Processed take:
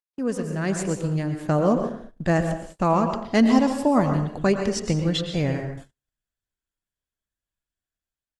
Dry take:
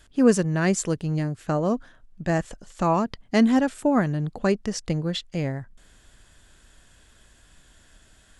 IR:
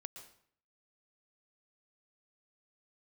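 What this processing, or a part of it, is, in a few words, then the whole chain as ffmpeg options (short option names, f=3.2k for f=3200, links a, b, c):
speakerphone in a meeting room: -filter_complex "[0:a]asettb=1/sr,asplit=3[a][b][c];[a]atrim=end=3.424[d];[b]atrim=start=3.42:end=4.12,asetpts=PTS-STARTPTS,afade=t=in:d=0.004:c=qsin,afade=t=out:st=0.696:d=0.004:c=qsin,equalizer=f=1k:t=o:w=0.33:g=8,equalizer=f=1.6k:t=o:w=0.33:g=-10,equalizer=f=5k:t=o:w=0.33:g=10[e];[c]atrim=start=4.116[f];[d][e]acrossfade=d=0.004:c1=hsin:c2=qsin[g];[g][f]acrossfade=d=0.004:c1=qsin:c2=hsin[h];[1:a]atrim=start_sample=2205[i];[h][i]afir=irnorm=-1:irlink=0,asplit=2[j][k];[k]adelay=90,highpass=300,lowpass=3.4k,asoftclip=type=hard:threshold=-20.5dB,volume=-14dB[l];[j][l]amix=inputs=2:normalize=0,dynaudnorm=f=280:g=5:m=13.5dB,agate=range=-42dB:threshold=-35dB:ratio=16:detection=peak,volume=-4dB" -ar 48000 -c:a libopus -b:a 24k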